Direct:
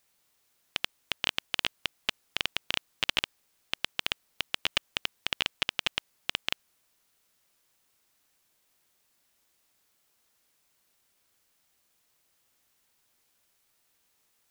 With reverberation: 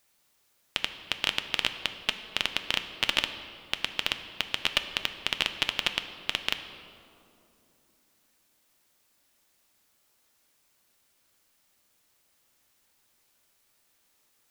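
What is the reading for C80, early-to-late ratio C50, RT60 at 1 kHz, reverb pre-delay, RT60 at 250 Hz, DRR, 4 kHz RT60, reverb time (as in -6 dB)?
10.5 dB, 10.0 dB, 2.5 s, 3 ms, 3.7 s, 7.5 dB, 1.5 s, 2.8 s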